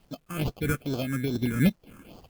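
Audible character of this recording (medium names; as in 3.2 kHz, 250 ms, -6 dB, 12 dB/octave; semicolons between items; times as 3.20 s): aliases and images of a low sample rate 1.9 kHz, jitter 0%; phasing stages 4, 2.4 Hz, lowest notch 670–2000 Hz; a quantiser's noise floor 12-bit, dither none; random flutter of the level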